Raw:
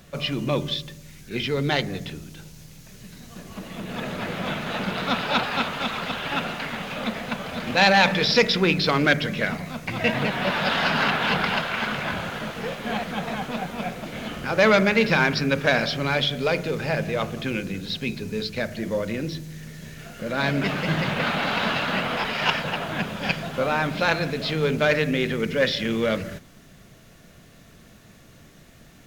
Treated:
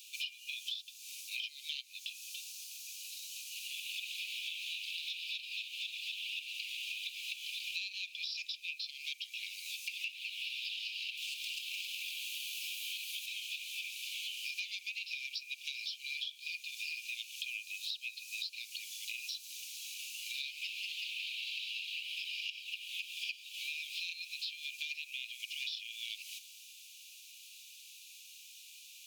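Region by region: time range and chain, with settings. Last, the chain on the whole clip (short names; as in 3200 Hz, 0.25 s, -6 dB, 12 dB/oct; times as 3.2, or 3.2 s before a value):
11.17–13.26 high shelf 7900 Hz +11.5 dB + overloaded stage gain 23 dB
whole clip: Chebyshev high-pass 2400 Hz, order 8; compressor 16:1, threshold -43 dBFS; gain +5.5 dB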